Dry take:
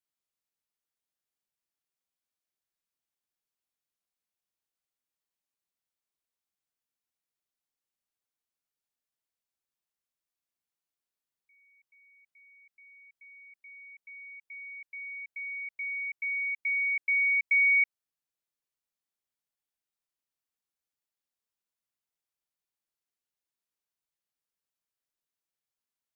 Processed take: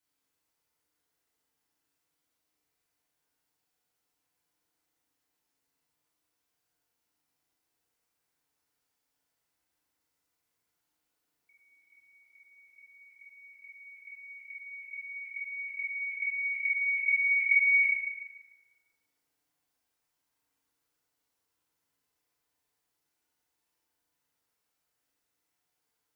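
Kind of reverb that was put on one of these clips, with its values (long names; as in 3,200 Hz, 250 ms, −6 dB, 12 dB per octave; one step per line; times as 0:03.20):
feedback delay network reverb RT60 2 s, low-frequency decay 0.8×, high-frequency decay 0.35×, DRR −7.5 dB
level +3.5 dB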